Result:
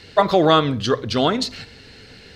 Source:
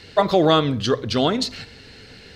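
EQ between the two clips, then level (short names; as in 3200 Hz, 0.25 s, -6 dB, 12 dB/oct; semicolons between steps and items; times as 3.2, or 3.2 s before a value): dynamic EQ 1300 Hz, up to +4 dB, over -28 dBFS, Q 0.87; 0.0 dB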